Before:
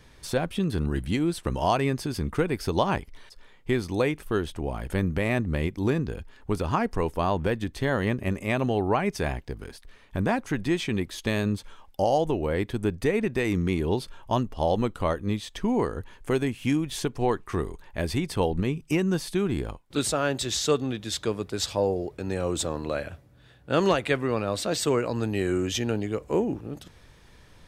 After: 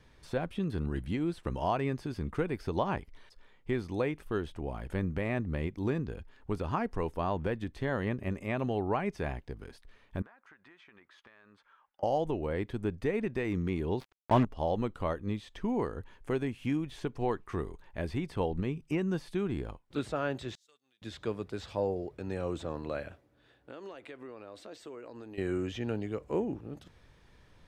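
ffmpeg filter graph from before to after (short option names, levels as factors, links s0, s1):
-filter_complex "[0:a]asettb=1/sr,asplit=3[s0][s1][s2];[s0]atrim=end=10.224[s3];[s1]atrim=start=10.22:end=12.03,asetpts=PTS-STARTPTS,afade=t=in:d=0.004:c=qsin,afade=t=out:st=1.806:d=0.004:c=qsin,bandpass=f=1400:t=q:w=2.1,acompressor=threshold=0.00501:ratio=12:attack=3.2:release=140:knee=1:detection=peak[s4];[s2]atrim=start=12.026[s5];[s3][s4]acrossfade=d=0.004:c1=hsin:c2=qsin[s6];[s6][s5]acrossfade=d=0.004:c1=qsin:c2=hsin,asettb=1/sr,asplit=3[s7][s8][s9];[s7]atrim=end=14.004[s10];[s8]atrim=start=14:end=14.45,asetpts=PTS-STARTPTS,afade=t=in:d=0.004:c=qsin,afade=t=out:st=0.446:d=0.004:c=qsin,acrusher=bits=4:mix=0:aa=0.5,acontrast=89[s11];[s9]atrim=start=14.446[s12];[s10][s11]acrossfade=d=0.004:c1=hsin:c2=qsin[s13];[s13][s12]acrossfade=d=0.004:c1=qsin:c2=hsin,asettb=1/sr,asplit=3[s14][s15][s16];[s14]atrim=end=20.554[s17];[s15]atrim=start=20.55:end=21.02,asetpts=PTS-STARTPTS,afade=t=in:d=0.004:c=qsin,afade=t=out:st=0.466:d=0.004:c=qsin,agate=range=0.2:threshold=0.0501:ratio=16:release=100:detection=peak,aderivative,acompressor=threshold=0.00112:ratio=3:attack=3.2:release=140:knee=1:detection=peak[s18];[s16]atrim=start=21.016[s19];[s17][s18]acrossfade=d=0.004:c1=hsin:c2=qsin[s20];[s20][s19]acrossfade=d=0.004:c1=qsin:c2=hsin,asettb=1/sr,asplit=3[s21][s22][s23];[s21]atrim=end=23.124[s24];[s22]atrim=start=23.12:end=25.38,asetpts=PTS-STARTPTS,afade=t=in:d=0.004:c=qsin,afade=t=out:st=2.256:d=0.004:c=qsin,lowshelf=f=220:t=q:w=1.5:g=-8,acompressor=threshold=0.0141:ratio=5:attack=3.2:release=140:knee=1:detection=peak[s25];[s23]atrim=start=25.376[s26];[s24][s25]acrossfade=d=0.004:c1=hsin:c2=qsin[s27];[s27][s26]acrossfade=d=0.004:c1=qsin:c2=hsin,acrossover=split=2900[s28][s29];[s29]acompressor=threshold=0.00794:ratio=4:attack=1:release=60[s30];[s28][s30]amix=inputs=2:normalize=0,highshelf=f=5700:g=-9,volume=0.473"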